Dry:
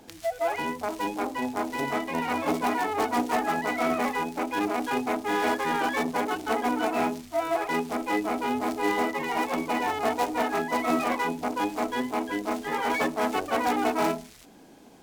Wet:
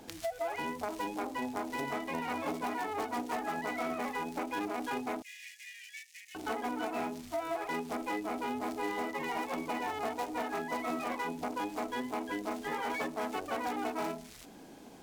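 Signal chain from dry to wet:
downward compressor 4 to 1, threshold −34 dBFS, peak gain reduction 12 dB
0:05.22–0:06.35: Chebyshev high-pass with heavy ripple 1,800 Hz, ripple 6 dB

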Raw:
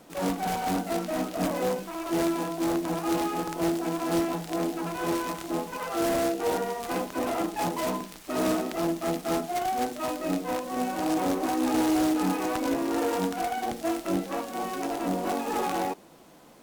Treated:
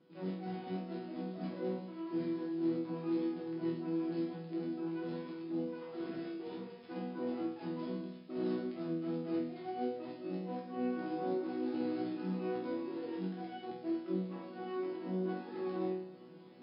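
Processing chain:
high-pass filter 110 Hz
low shelf with overshoot 480 Hz +8.5 dB, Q 1.5
reversed playback
upward compression, threshold −26 dBFS
reversed playback
linear-phase brick-wall low-pass 5,200 Hz
resonators tuned to a chord B2 sus4, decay 0.66 s

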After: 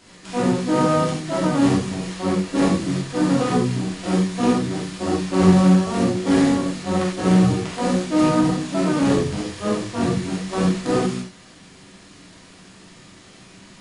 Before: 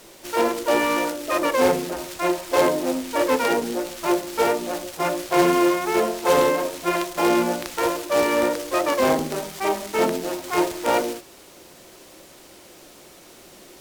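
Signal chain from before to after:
pitch shifter −11 semitones
reverb whose tail is shaped and stops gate 120 ms flat, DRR −7 dB
level −6 dB

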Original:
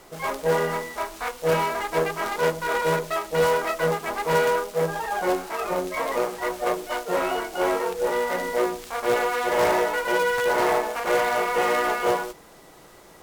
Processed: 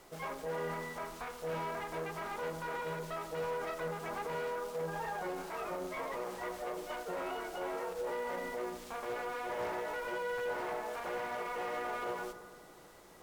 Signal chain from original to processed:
brickwall limiter −22.5 dBFS, peak gain reduction 9.5 dB
on a send: bucket-brigade delay 86 ms, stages 1,024, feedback 78%, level −13.5 dB
on the sum: slew-rate limiting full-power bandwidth 59 Hz
level −8.5 dB

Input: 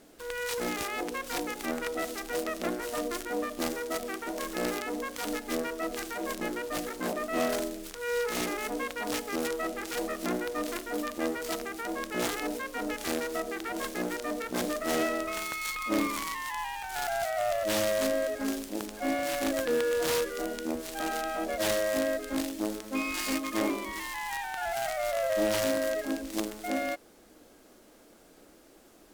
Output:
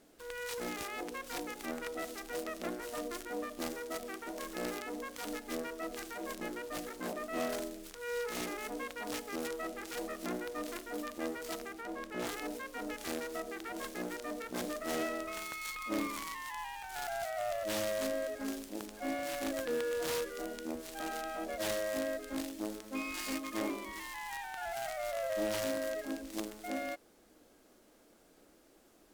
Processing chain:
0:11.73–0:12.27: high-shelf EQ 3,900 Hz −7.5 dB
level −7 dB

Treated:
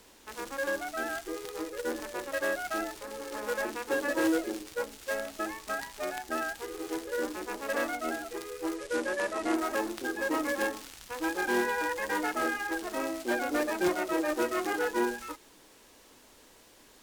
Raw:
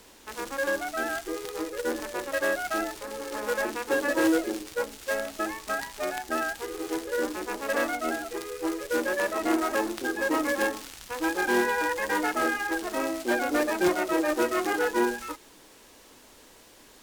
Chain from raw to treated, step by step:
0:08.76–0:09.55: low-pass filter 11,000 Hz 24 dB per octave
level −4 dB

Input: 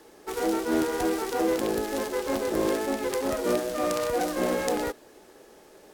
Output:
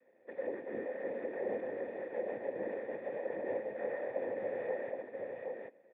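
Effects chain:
cochlear-implant simulation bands 6
formant resonators in series e
single-tap delay 770 ms −3.5 dB
level −2.5 dB

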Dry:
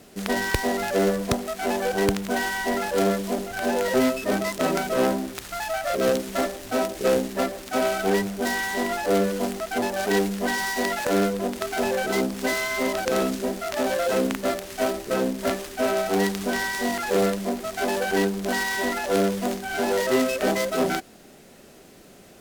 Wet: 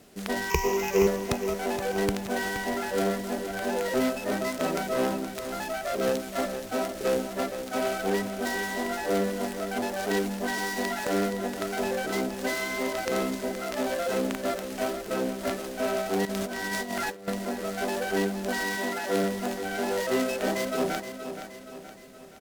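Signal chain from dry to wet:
0:00.50–0:01.07: EQ curve with evenly spaced ripples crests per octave 0.77, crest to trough 18 dB
repeating echo 472 ms, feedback 49%, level −10 dB
0:16.25–0:17.28: compressor whose output falls as the input rises −27 dBFS, ratio −0.5
0:18.77–0:19.24: high-pass filter 88 Hz
level −5 dB

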